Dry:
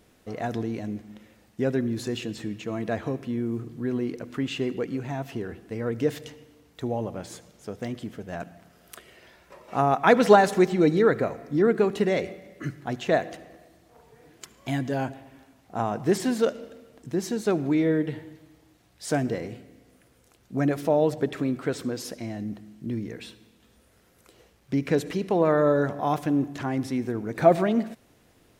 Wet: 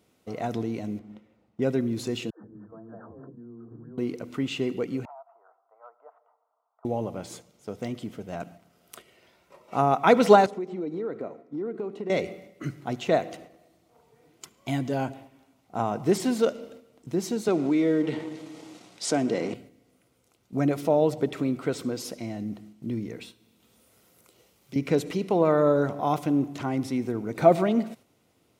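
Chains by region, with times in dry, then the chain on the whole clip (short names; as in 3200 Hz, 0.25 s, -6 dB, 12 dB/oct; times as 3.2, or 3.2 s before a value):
0.99–1.62 LPF 1800 Hz 6 dB/oct + mismatched tape noise reduction decoder only
2.3–3.98 level quantiser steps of 22 dB + brick-wall FIR low-pass 1800 Hz + dispersion lows, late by 0.145 s, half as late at 330 Hz
5.05–6.85 elliptic band-pass 650–1300 Hz, stop band 70 dB + compressor 12:1, threshold -41 dBFS
10.46–12.1 band-pass 290 Hz, Q 0.97 + compressor, threshold -23 dBFS + tilt +3 dB/oct
17.48–19.54 G.711 law mismatch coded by A + Chebyshev band-pass 230–7400 Hz + fast leveller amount 50%
23.23–24.76 high shelf 11000 Hz +9 dB + doubler 40 ms -12 dB + three-band squash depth 70%
whole clip: HPF 90 Hz; gate -46 dBFS, range -6 dB; notch 1700 Hz, Q 5.7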